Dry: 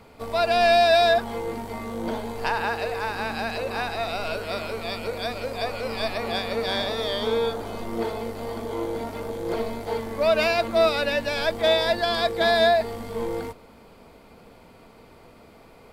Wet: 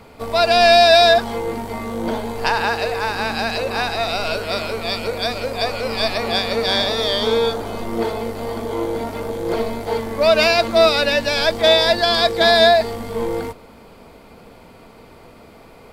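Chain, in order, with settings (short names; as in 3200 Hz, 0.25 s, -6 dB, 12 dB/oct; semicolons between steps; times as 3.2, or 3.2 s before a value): dynamic EQ 5100 Hz, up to +6 dB, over -42 dBFS, Q 1.1; gain +6 dB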